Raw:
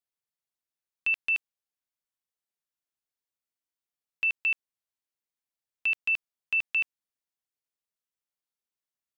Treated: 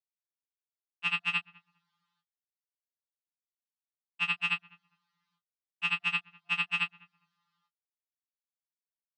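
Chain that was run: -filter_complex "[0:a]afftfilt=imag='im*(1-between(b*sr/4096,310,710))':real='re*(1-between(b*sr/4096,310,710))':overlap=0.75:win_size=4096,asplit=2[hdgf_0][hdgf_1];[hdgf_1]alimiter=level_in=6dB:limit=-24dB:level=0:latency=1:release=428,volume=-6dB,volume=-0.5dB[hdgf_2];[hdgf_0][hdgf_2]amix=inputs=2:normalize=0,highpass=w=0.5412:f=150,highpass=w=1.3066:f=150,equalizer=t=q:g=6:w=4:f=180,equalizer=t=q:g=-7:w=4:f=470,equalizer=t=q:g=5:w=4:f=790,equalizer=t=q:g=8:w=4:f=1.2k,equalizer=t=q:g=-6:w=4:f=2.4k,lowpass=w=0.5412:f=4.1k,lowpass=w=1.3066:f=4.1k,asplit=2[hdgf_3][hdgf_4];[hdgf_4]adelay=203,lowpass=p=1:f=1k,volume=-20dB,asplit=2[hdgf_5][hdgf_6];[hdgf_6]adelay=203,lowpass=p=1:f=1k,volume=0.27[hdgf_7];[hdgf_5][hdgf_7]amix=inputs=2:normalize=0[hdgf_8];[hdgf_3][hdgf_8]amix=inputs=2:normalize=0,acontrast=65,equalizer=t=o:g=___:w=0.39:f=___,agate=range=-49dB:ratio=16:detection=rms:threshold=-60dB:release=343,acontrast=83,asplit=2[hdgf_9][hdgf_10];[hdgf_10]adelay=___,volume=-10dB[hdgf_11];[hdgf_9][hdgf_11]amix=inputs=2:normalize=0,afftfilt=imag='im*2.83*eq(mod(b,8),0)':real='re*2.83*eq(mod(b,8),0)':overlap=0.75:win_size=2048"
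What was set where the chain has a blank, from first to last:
13.5, 230, 19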